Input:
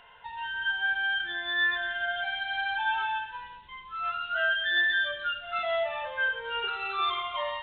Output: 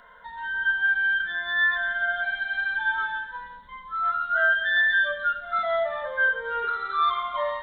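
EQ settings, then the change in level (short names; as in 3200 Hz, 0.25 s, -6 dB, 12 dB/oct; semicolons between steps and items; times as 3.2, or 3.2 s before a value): fixed phaser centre 540 Hz, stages 8; +7.0 dB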